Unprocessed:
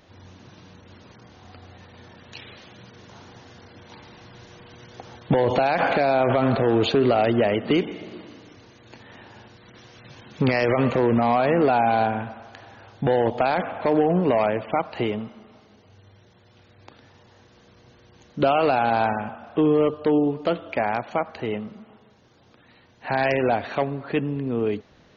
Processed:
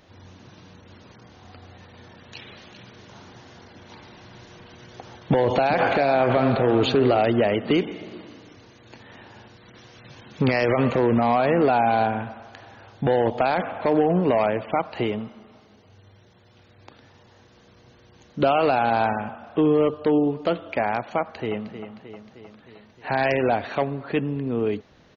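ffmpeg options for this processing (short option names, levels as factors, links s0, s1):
-filter_complex "[0:a]asplit=3[s0][s1][s2];[s0]afade=t=out:st=2.39:d=0.02[s3];[s1]aecho=1:1:395:0.316,afade=t=in:st=2.39:d=0.02,afade=t=out:st=7.17:d=0.02[s4];[s2]afade=t=in:st=7.17:d=0.02[s5];[s3][s4][s5]amix=inputs=3:normalize=0,asplit=2[s6][s7];[s7]afade=t=in:st=21.2:d=0.01,afade=t=out:st=21.72:d=0.01,aecho=0:1:310|620|930|1240|1550|1860|2170|2480:0.298538|0.19405|0.126132|0.0819861|0.0532909|0.0346391|0.0225154|0.014635[s8];[s6][s8]amix=inputs=2:normalize=0"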